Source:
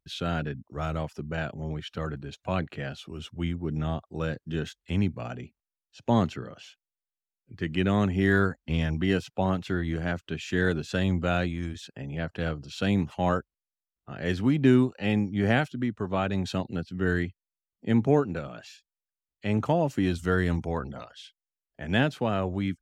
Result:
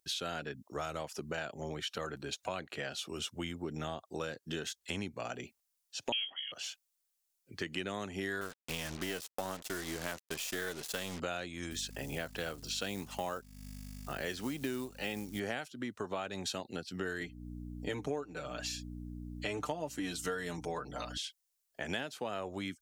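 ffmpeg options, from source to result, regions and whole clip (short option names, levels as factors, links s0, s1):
-filter_complex "[0:a]asettb=1/sr,asplit=3[s0][s1][s2];[s0]atrim=end=6.124[s3];[s1]atrim=start=6.12:end=6.52,asetpts=PTS-STARTPTS,afade=t=in:d=0.004:c=qsin,afade=t=out:st=0.396:d=0.004:c=qsin,lowpass=f=2900:t=q:w=0.5098,lowpass=f=2900:t=q:w=0.6013,lowpass=f=2900:t=q:w=0.9,lowpass=f=2900:t=q:w=2.563,afreqshift=-3400,asplit=2[s4][s5];[s5]adelay=24,volume=0.251[s6];[s4][s6]amix=inputs=2:normalize=0,atrim=end_sample=17640[s7];[s2]atrim=start=6.516[s8];[s3][s7]acrossfade=d=0.004:c1=hsin:c2=qsin[s9];[s9][s8]acrossfade=d=0.004:c1=qsin:c2=hsin,asettb=1/sr,asplit=3[s10][s11][s12];[s10]atrim=end=8.414[s13];[s11]atrim=start=8.41:end=11.2,asetpts=PTS-STARTPTS,afade=t=in:d=0.004:c=qsin,afade=t=out:st=2.786:d=0.004:c=qsin,aeval=exprs='if(lt(val(0),0),0.447*val(0),val(0))':c=same,agate=range=0.0224:threshold=0.00891:ratio=3:release=100:detection=peak,acrusher=bits=6:mix=0:aa=0.5[s14];[s12]atrim=start=11.196[s15];[s13][s14]acrossfade=d=0.004:c1=hsin:c2=qsin[s16];[s16][s15]acrossfade=d=0.004:c1=qsin:c2=hsin,asettb=1/sr,asplit=3[s17][s18][s19];[s17]atrim=end=11.714[s20];[s18]atrim=start=11.71:end=15.4,asetpts=PTS-STARTPTS,afade=t=in:d=0.004:c=qsin,afade=t=out:st=3.686:d=0.004:c=qsin,aeval=exprs='val(0)+0.0141*(sin(2*PI*50*n/s)+sin(2*PI*2*50*n/s)/2+sin(2*PI*3*50*n/s)/3+sin(2*PI*4*50*n/s)/4+sin(2*PI*5*50*n/s)/5)':c=same,acrusher=bits=8:mode=log:mix=0:aa=0.000001[s21];[s19]atrim=start=15.396[s22];[s20][s21]acrossfade=d=0.004:c1=hsin:c2=qsin[s23];[s23][s22]acrossfade=d=0.004:c1=qsin:c2=hsin,asettb=1/sr,asplit=3[s24][s25][s26];[s24]atrim=end=17.204[s27];[s25]atrim=start=17.2:end=21.18,asetpts=PTS-STARTPTS,afade=t=in:d=0.004:c=qsin,afade=t=out:st=3.976:d=0.004:c=qsin,aecho=1:1:6.7:0.78,atrim=end_sample=175518,aeval=exprs='val(0)+0.0178*(sin(2*PI*60*n/s)+sin(2*PI*2*60*n/s)/2+sin(2*PI*3*60*n/s)/3+sin(2*PI*4*60*n/s)/4+sin(2*PI*5*60*n/s)/5)':c=same[s28];[s26]atrim=start=21.176[s29];[s27][s28]acrossfade=d=0.004:c1=hsin:c2=qsin[s30];[s30][s29]acrossfade=d=0.004:c1=qsin:c2=hsin,bass=f=250:g=-14,treble=f=4000:g=11,acompressor=threshold=0.01:ratio=6,volume=1.68"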